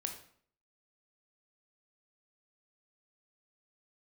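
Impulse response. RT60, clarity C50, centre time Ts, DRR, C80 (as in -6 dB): 0.55 s, 8.0 dB, 18 ms, 4.0 dB, 12.0 dB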